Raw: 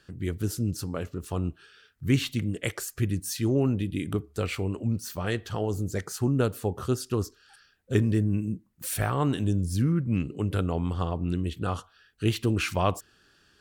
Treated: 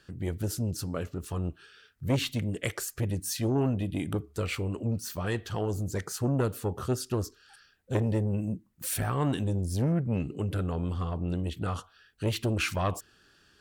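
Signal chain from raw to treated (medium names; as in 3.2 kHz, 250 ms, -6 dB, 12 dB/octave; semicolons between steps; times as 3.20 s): transformer saturation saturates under 550 Hz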